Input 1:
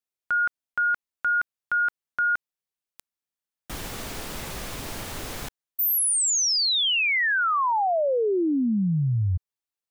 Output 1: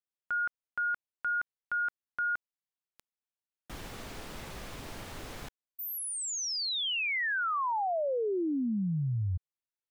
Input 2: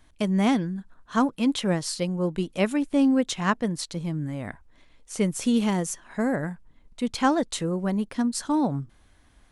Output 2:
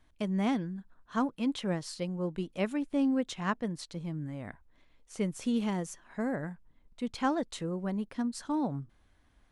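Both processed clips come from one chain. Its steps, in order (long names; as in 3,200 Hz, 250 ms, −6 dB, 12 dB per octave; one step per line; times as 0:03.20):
high-shelf EQ 6,000 Hz −8 dB
level −7.5 dB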